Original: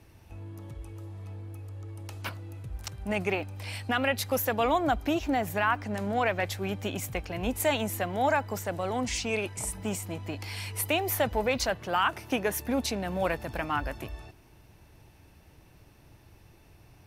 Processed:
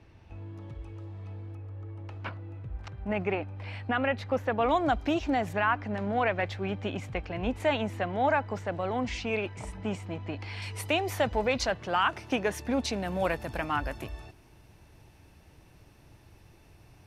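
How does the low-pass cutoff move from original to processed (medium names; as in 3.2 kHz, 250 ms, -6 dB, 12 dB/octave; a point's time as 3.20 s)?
4 kHz
from 1.55 s 2.2 kHz
from 4.69 s 5.8 kHz
from 5.53 s 3.2 kHz
from 10.62 s 6.4 kHz
from 12.93 s 12 kHz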